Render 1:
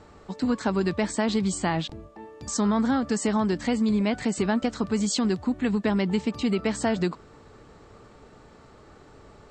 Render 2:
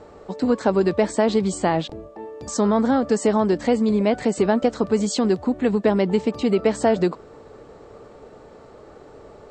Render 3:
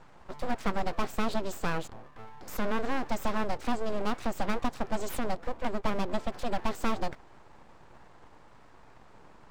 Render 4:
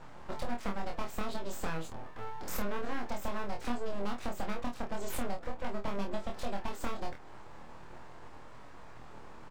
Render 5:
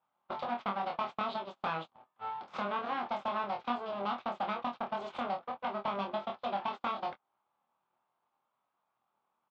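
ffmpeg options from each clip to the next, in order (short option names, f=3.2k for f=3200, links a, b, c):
-af "equalizer=f=520:w=0.94:g=11"
-af "aeval=exprs='abs(val(0))':c=same,volume=-8dB"
-af "acompressor=threshold=-34dB:ratio=6,aecho=1:1:25|50:0.708|0.251,volume=2dB"
-af "highpass=260,equalizer=f=300:t=q:w=4:g=-8,equalizer=f=450:t=q:w=4:g=-8,equalizer=f=810:t=q:w=4:g=5,equalizer=f=1.2k:t=q:w=4:g=6,equalizer=f=1.8k:t=q:w=4:g=-7,equalizer=f=3.4k:t=q:w=4:g=4,lowpass=f=3.8k:w=0.5412,lowpass=f=3.8k:w=1.3066,agate=range=-33dB:threshold=-42dB:ratio=16:detection=peak,volume=3.5dB"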